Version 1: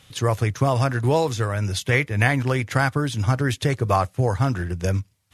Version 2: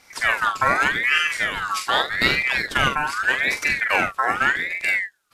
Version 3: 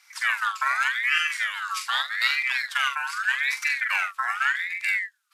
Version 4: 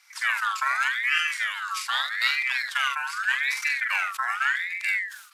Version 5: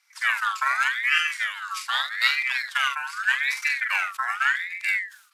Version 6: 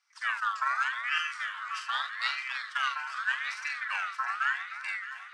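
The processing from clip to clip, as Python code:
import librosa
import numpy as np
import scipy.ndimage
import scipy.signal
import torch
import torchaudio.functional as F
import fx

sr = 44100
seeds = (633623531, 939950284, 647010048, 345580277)

y1 = fx.room_early_taps(x, sr, ms=(44, 74), db=(-5.5, -13.5))
y1 = fx.ring_lfo(y1, sr, carrier_hz=1700.0, swing_pct=30, hz=0.83)
y1 = F.gain(torch.from_numpy(y1), 1.5).numpy()
y2 = scipy.signal.sosfilt(scipy.signal.butter(4, 1100.0, 'highpass', fs=sr, output='sos'), y1)
y2 = F.gain(torch.from_numpy(y2), -3.5).numpy()
y3 = fx.sustainer(y2, sr, db_per_s=87.0)
y3 = F.gain(torch.from_numpy(y3), -1.0).numpy()
y4 = fx.upward_expand(y3, sr, threshold_db=-44.0, expansion=1.5)
y4 = F.gain(torch.from_numpy(y4), 3.5).numpy()
y5 = fx.cabinet(y4, sr, low_hz=410.0, low_slope=12, high_hz=7900.0, hz=(1200.0, 2200.0, 3800.0, 7100.0), db=(4, -7, -4, -6))
y5 = fx.echo_alternate(y5, sr, ms=307, hz=1400.0, feedback_pct=75, wet_db=-9.5)
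y5 = F.gain(torch.from_numpy(y5), -6.5).numpy()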